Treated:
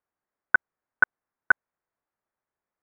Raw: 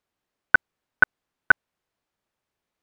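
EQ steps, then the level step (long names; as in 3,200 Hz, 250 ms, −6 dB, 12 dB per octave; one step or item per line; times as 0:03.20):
low-pass filter 2,000 Hz 24 dB per octave
high-frequency loss of the air 310 metres
low-shelf EQ 480 Hz −9.5 dB
0.0 dB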